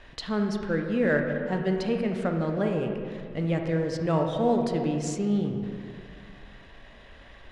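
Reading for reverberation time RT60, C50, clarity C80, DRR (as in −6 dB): 2.1 s, 4.0 dB, 5.5 dB, 2.5 dB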